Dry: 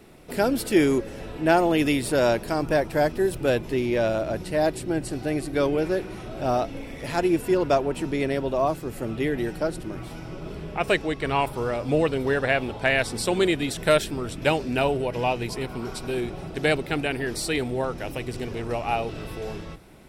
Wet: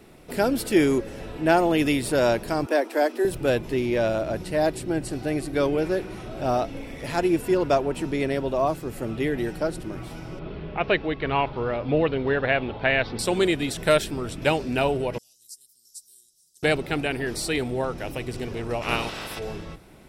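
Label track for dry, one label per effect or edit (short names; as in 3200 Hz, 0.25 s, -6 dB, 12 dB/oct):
2.660000	3.250000	steep high-pass 240 Hz 72 dB/oct
10.390000	13.190000	inverse Chebyshev low-pass stop band from 7500 Hz
15.180000	16.630000	inverse Chebyshev high-pass stop band from 2500 Hz, stop band 50 dB
18.810000	19.380000	spectral limiter ceiling under each frame's peak by 22 dB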